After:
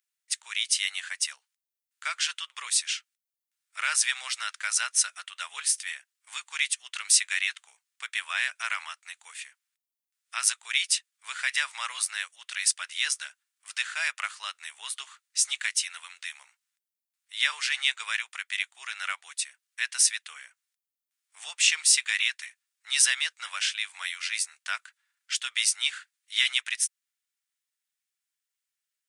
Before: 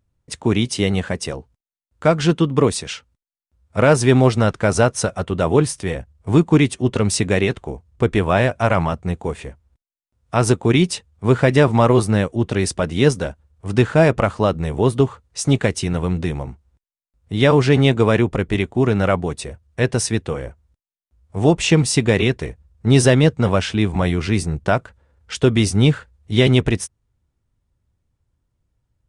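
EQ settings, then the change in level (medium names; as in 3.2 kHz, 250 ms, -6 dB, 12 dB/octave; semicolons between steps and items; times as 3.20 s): inverse Chebyshev high-pass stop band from 280 Hz, stop band 80 dB; treble shelf 7.3 kHz +9 dB; -2.0 dB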